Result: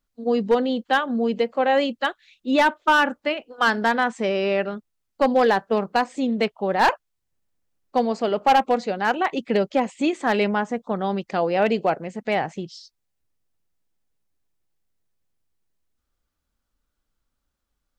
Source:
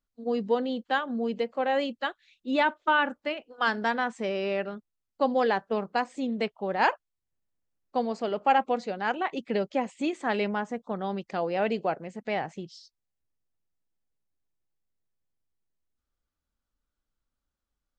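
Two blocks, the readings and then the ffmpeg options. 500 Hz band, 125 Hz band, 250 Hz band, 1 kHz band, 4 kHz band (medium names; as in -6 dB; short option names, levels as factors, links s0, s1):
+7.0 dB, +7.0 dB, +7.0 dB, +6.5 dB, +7.0 dB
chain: -af "asoftclip=type=hard:threshold=0.126,volume=2.24"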